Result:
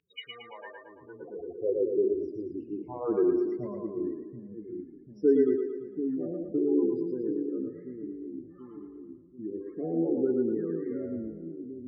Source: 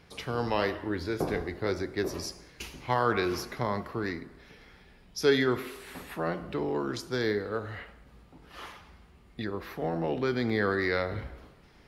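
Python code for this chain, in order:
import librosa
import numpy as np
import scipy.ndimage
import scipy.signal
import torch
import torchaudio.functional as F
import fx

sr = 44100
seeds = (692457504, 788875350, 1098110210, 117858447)

p1 = x * (1.0 - 0.72 / 2.0 + 0.72 / 2.0 * np.cos(2.0 * np.pi * 0.6 * (np.arange(len(x)) / sr)))
p2 = fx.spec_topn(p1, sr, count=8)
p3 = p2 + fx.echo_split(p2, sr, split_hz=310.0, low_ms=737, high_ms=113, feedback_pct=52, wet_db=-3.0, dry=0)
p4 = fx.filter_sweep_bandpass(p3, sr, from_hz=2600.0, to_hz=310.0, start_s=0.31, end_s=2.31, q=3.0)
y = F.gain(torch.from_numpy(p4), 9.0).numpy()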